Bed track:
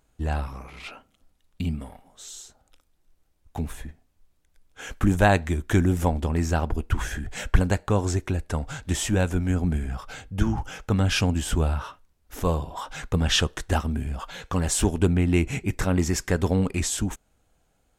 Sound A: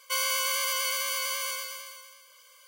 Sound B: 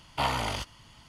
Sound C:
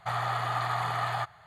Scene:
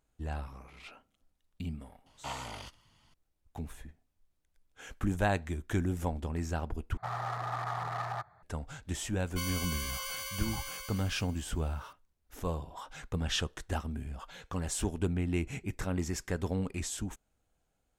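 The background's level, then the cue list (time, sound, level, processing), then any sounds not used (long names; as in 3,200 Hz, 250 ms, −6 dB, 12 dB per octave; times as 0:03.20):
bed track −10.5 dB
0:02.06: mix in B −12 dB
0:06.97: overwrite with C −4.5 dB + adaptive Wiener filter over 15 samples
0:09.26: mix in A −10 dB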